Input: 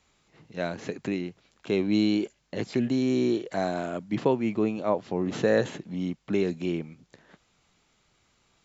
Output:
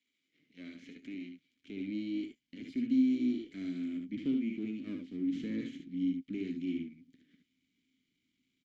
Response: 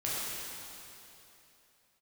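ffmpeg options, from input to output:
-filter_complex "[0:a]aeval=exprs='if(lt(val(0),0),0.251*val(0),val(0))':channel_layout=same,asplit=3[link_01][link_02][link_03];[link_01]bandpass=frequency=270:width_type=q:width=8,volume=0dB[link_04];[link_02]bandpass=frequency=2290:width_type=q:width=8,volume=-6dB[link_05];[link_03]bandpass=frequency=3010:width_type=q:width=8,volume=-9dB[link_06];[link_04][link_05][link_06]amix=inputs=3:normalize=0,bass=frequency=250:gain=-9,treble=frequency=4000:gain=9,asplit=2[link_07][link_08];[link_08]aecho=0:1:61|73:0.335|0.473[link_09];[link_07][link_09]amix=inputs=2:normalize=0,asubboost=boost=11:cutoff=180,acrossover=split=960[link_10][link_11];[link_11]alimiter=level_in=20dB:limit=-24dB:level=0:latency=1:release=26,volume=-20dB[link_12];[link_10][link_12]amix=inputs=2:normalize=0"

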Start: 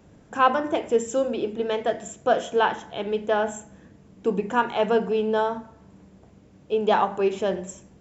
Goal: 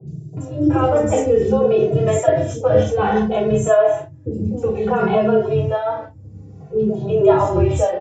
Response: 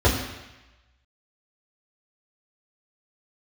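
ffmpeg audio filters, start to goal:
-filter_complex "[0:a]highpass=71,bass=frequency=250:gain=4,treble=frequency=4000:gain=3,agate=range=-29dB:threshold=-38dB:ratio=16:detection=peak,acrossover=split=100[link_01][link_02];[link_02]acompressor=mode=upward:threshold=-39dB:ratio=2.5[link_03];[link_01][link_03]amix=inputs=2:normalize=0,alimiter=limit=-17.5dB:level=0:latency=1:release=53,areverse,acompressor=threshold=-32dB:ratio=6,areverse,acrossover=split=390|4500[link_04][link_05][link_06];[link_06]adelay=70[link_07];[link_05]adelay=370[link_08];[link_04][link_08][link_07]amix=inputs=3:normalize=0[link_09];[1:a]atrim=start_sample=2205,atrim=end_sample=4410,asetrate=61740,aresample=44100[link_10];[link_09][link_10]afir=irnorm=-1:irlink=0,aresample=16000,aresample=44100,asplit=2[link_11][link_12];[link_12]adelay=2.3,afreqshift=-0.59[link_13];[link_11][link_13]amix=inputs=2:normalize=1,volume=3dB"

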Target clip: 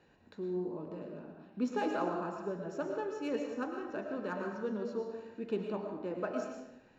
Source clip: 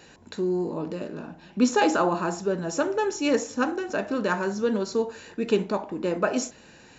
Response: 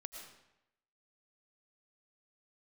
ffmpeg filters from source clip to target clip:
-filter_complex "[0:a]highshelf=frequency=2300:gain=-8,acrossover=split=550[link_01][link_02];[link_02]adynamicsmooth=sensitivity=4.5:basefreq=5000[link_03];[link_01][link_03]amix=inputs=2:normalize=0[link_04];[1:a]atrim=start_sample=2205[link_05];[link_04][link_05]afir=irnorm=-1:irlink=0,volume=-7dB"

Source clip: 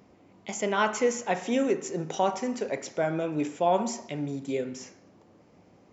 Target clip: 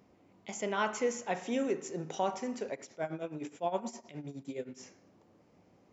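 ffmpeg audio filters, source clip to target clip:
ffmpeg -i in.wav -filter_complex "[0:a]asettb=1/sr,asplit=3[link_01][link_02][link_03];[link_01]atrim=end=2.724[link_04];[link_02]atrim=start=2.72:end=4.83,asetpts=PTS-STARTPTS,afade=type=in:duration=0.004:curve=qsin,afade=type=out:start_time=2.106:duration=0.004:curve=qsin,tremolo=f=9.6:d=0.81[link_05];[link_03]atrim=start=4.826[link_06];[link_04][link_05]acrossfade=duration=0.004:curve1=hsin:curve2=qsin[link_07];[link_07][link_06]acrossfade=duration=0.004:curve1=qsin:curve2=hsin,volume=-6.5dB" out.wav

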